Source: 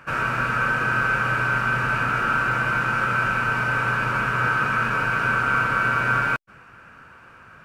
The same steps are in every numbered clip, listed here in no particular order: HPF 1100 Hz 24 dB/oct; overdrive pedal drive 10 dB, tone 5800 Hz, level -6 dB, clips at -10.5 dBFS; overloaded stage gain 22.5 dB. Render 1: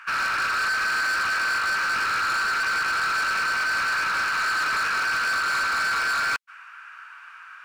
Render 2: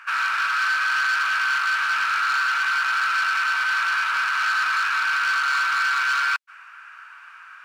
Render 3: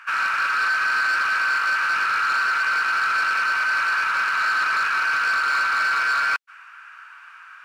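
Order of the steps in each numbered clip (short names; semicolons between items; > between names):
HPF > overdrive pedal > overloaded stage; overloaded stage > HPF > overdrive pedal; HPF > overloaded stage > overdrive pedal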